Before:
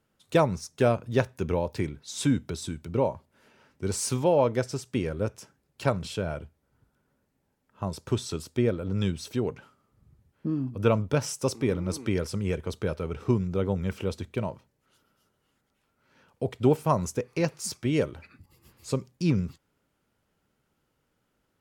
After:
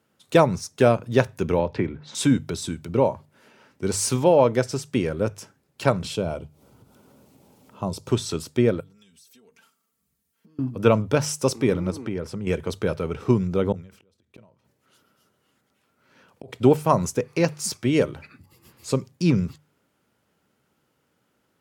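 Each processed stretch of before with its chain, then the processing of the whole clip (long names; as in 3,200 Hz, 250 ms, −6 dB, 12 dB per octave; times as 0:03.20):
0:01.59–0:02.15: low-pass filter 2,300 Hz + multiband upward and downward compressor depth 100%
0:06.15–0:08.09: parametric band 1,700 Hz −13 dB 0.58 octaves + upward compression, threshold −44 dBFS
0:08.80–0:10.59: first-order pre-emphasis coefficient 0.9 + downward compressor 16 to 1, threshold −58 dBFS + comb filter 4.4 ms, depth 83%
0:11.90–0:12.47: high-shelf EQ 2,700 Hz −11.5 dB + downward compressor 2 to 1, threshold −33 dBFS
0:13.72–0:16.53: notch filter 870 Hz, Q 18 + gate with flip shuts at −28 dBFS, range −41 dB + level that may fall only so fast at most 100 dB per second
whole clip: high-pass filter 96 Hz; mains-hum notches 50/100/150 Hz; level +5.5 dB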